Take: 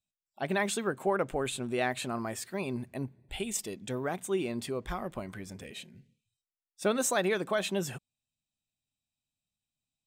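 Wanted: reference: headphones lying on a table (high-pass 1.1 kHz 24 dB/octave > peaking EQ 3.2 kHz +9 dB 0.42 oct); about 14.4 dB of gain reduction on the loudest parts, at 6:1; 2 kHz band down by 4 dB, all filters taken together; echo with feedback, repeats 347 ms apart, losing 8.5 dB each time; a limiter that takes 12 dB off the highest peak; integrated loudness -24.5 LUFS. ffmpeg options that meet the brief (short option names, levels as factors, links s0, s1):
-af "equalizer=f=2000:t=o:g=-6.5,acompressor=threshold=0.00891:ratio=6,alimiter=level_in=7.08:limit=0.0631:level=0:latency=1,volume=0.141,highpass=f=1100:w=0.5412,highpass=f=1100:w=1.3066,equalizer=f=3200:t=o:w=0.42:g=9,aecho=1:1:347|694|1041|1388:0.376|0.143|0.0543|0.0206,volume=25.1"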